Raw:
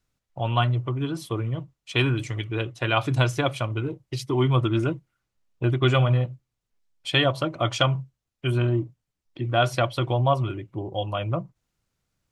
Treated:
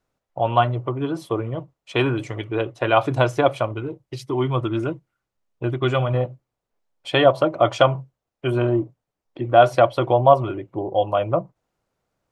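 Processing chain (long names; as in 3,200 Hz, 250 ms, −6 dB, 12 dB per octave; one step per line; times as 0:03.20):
parametric band 620 Hz +14 dB 2.6 octaves, from 0:03.74 +7.5 dB, from 0:06.14 +15 dB
level −4.5 dB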